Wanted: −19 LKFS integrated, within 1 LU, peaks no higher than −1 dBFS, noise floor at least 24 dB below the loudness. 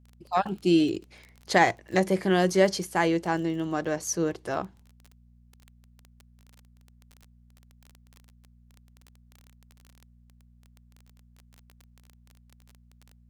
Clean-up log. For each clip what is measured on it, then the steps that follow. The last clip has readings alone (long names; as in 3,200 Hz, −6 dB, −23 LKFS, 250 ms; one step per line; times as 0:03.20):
crackle rate 20 per second; mains hum 60 Hz; hum harmonics up to 240 Hz; level of the hum −55 dBFS; integrated loudness −26.0 LKFS; sample peak −7.0 dBFS; target loudness −19.0 LKFS
→ click removal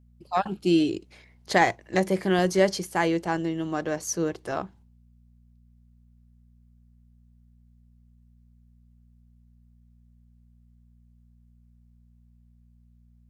crackle rate 0 per second; mains hum 60 Hz; hum harmonics up to 240 Hz; level of the hum −55 dBFS
→ hum removal 60 Hz, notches 4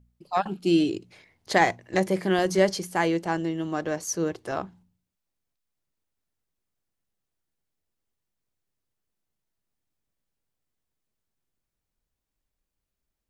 mains hum none found; integrated loudness −26.0 LKFS; sample peak −6.5 dBFS; target loudness −19.0 LKFS
→ level +7 dB
brickwall limiter −1 dBFS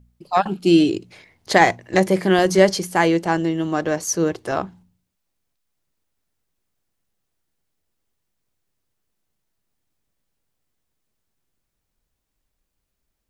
integrated loudness −19.0 LKFS; sample peak −1.0 dBFS; background noise floor −77 dBFS